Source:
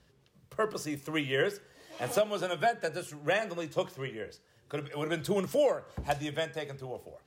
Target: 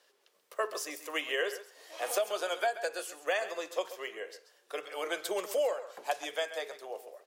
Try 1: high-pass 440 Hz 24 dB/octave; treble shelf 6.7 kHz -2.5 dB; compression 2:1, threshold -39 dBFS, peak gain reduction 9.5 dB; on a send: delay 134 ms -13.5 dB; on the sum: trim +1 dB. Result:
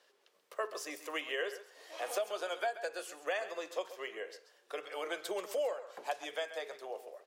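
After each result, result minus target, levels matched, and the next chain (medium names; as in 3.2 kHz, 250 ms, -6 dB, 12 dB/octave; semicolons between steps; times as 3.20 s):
compression: peak gain reduction +4.5 dB; 8 kHz band -2.5 dB
high-pass 440 Hz 24 dB/octave; treble shelf 6.7 kHz -2.5 dB; compression 2:1, threshold -30 dBFS, peak gain reduction 5 dB; on a send: delay 134 ms -13.5 dB; on the sum: trim +1 dB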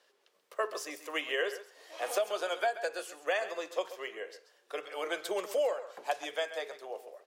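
8 kHz band -3.5 dB
high-pass 440 Hz 24 dB/octave; treble shelf 6.7 kHz +4.5 dB; compression 2:1, threshold -30 dBFS, peak gain reduction 5 dB; on a send: delay 134 ms -13.5 dB; on the sum: trim +1 dB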